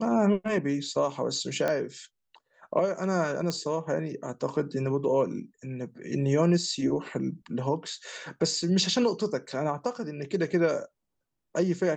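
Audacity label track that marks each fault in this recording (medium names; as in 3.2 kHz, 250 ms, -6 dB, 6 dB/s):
1.680000	1.680000	pop -15 dBFS
3.500000	3.500000	pop -16 dBFS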